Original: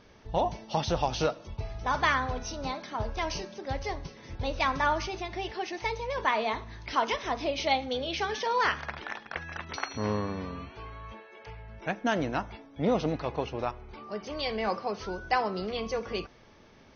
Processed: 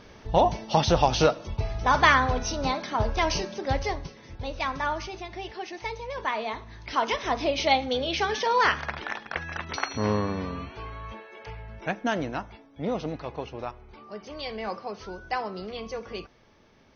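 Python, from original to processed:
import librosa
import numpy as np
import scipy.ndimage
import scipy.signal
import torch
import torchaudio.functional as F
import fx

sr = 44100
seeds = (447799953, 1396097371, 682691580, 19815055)

y = fx.gain(x, sr, db=fx.line((3.74, 7.0), (4.33, -2.0), (6.59, -2.0), (7.33, 4.5), (11.63, 4.5), (12.55, -3.0)))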